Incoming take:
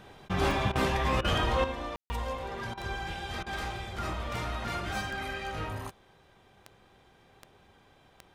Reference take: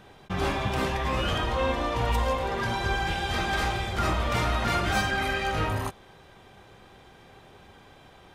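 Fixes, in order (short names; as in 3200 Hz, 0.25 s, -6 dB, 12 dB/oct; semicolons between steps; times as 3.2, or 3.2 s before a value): de-click; room tone fill 1.96–2.1; interpolate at 0.72/1.21/2.74/3.43, 33 ms; gain 0 dB, from 1.64 s +8.5 dB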